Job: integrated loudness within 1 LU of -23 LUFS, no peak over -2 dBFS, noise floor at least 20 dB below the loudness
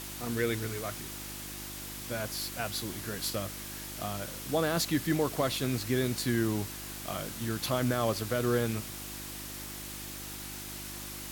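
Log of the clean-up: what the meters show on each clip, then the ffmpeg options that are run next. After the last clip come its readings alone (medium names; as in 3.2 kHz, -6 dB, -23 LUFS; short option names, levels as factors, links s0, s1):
hum 50 Hz; highest harmonic 350 Hz; hum level -45 dBFS; noise floor -42 dBFS; noise floor target -53 dBFS; loudness -33.0 LUFS; peak level -16.5 dBFS; loudness target -23.0 LUFS
-> -af "bandreject=f=50:t=h:w=4,bandreject=f=100:t=h:w=4,bandreject=f=150:t=h:w=4,bandreject=f=200:t=h:w=4,bandreject=f=250:t=h:w=4,bandreject=f=300:t=h:w=4,bandreject=f=350:t=h:w=4"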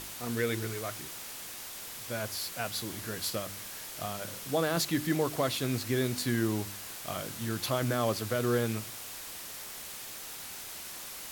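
hum not found; noise floor -43 dBFS; noise floor target -54 dBFS
-> -af "afftdn=nr=11:nf=-43"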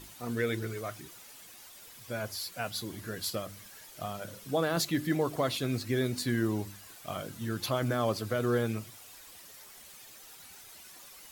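noise floor -52 dBFS; noise floor target -53 dBFS
-> -af "afftdn=nr=6:nf=-52"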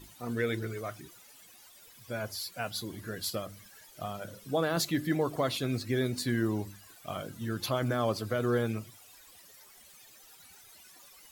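noise floor -56 dBFS; loudness -33.0 LUFS; peak level -17.0 dBFS; loudness target -23.0 LUFS
-> -af "volume=3.16"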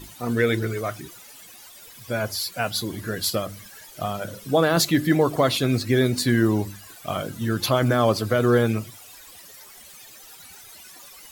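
loudness -23.0 LUFS; peak level -7.0 dBFS; noise floor -46 dBFS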